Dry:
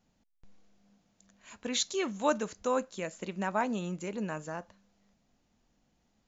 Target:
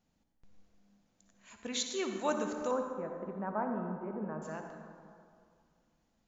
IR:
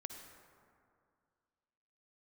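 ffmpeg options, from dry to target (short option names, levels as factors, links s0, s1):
-filter_complex "[0:a]asettb=1/sr,asplit=3[s0][s1][s2];[s0]atrim=end=2.714[s3];[s1]atrim=start=2.71:end=4.42,asetpts=PTS-STARTPTS,afade=t=in:d=0.004:c=qsin,afade=t=out:st=1.706:d=0.004:c=qsin,lowpass=f=1400:w=0.5412,lowpass=f=1400:w=1.3066[s4];[s2]atrim=start=4.416[s5];[s3][s4]acrossfade=d=0.004:c1=hsin:c2=qsin[s6];[s6][s5]acrossfade=d=0.004:c1=qsin:c2=hsin[s7];[1:a]atrim=start_sample=2205[s8];[s7][s8]afir=irnorm=-1:irlink=0"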